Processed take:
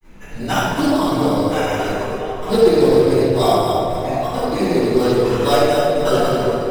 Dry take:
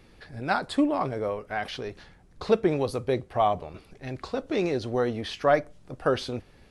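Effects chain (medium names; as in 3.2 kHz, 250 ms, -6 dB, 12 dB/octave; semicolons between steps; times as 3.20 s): backward echo that repeats 137 ms, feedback 53%, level -5 dB; in parallel at -0.5 dB: compression, threshold -31 dBFS, peak gain reduction 15 dB; on the sum: sample-and-hold 10×; granulator 114 ms, spray 12 ms, pitch spread up and down by 0 st; on a send: repeats whose band climbs or falls 339 ms, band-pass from 420 Hz, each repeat 0.7 oct, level -3 dB; on the sum: simulated room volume 610 m³, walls mixed, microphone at 9.7 m; loudspeaker Doppler distortion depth 0.12 ms; trim -10 dB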